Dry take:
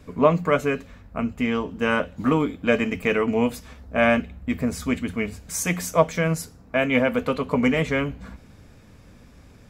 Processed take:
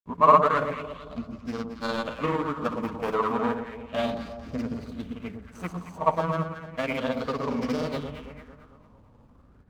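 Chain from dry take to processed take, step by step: median filter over 25 samples; dynamic bell 1.2 kHz, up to +7 dB, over -39 dBFS, Q 1.2; granulator, grains 20 per s, pitch spread up and down by 0 st; echo whose repeats swap between lows and highs 112 ms, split 1 kHz, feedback 67%, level -6 dB; sweeping bell 0.33 Hz 950–5300 Hz +11 dB; trim -7 dB

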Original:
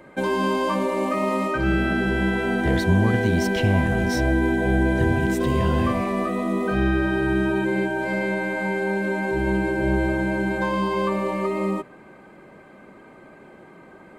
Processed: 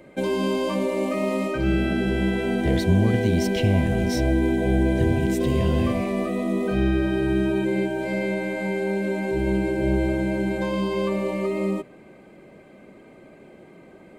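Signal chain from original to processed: high-order bell 1.2 kHz -8 dB 1.3 oct

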